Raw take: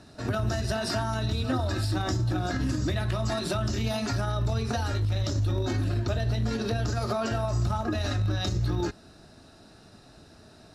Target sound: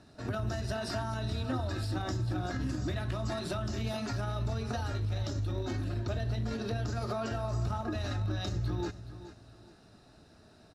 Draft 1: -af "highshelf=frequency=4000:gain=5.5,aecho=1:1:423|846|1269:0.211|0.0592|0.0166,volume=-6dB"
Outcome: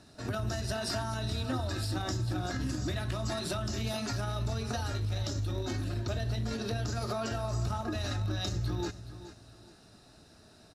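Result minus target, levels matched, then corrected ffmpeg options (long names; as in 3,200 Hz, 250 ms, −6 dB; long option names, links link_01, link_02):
8,000 Hz band +6.0 dB
-af "highshelf=frequency=4000:gain=-3.5,aecho=1:1:423|846|1269:0.211|0.0592|0.0166,volume=-6dB"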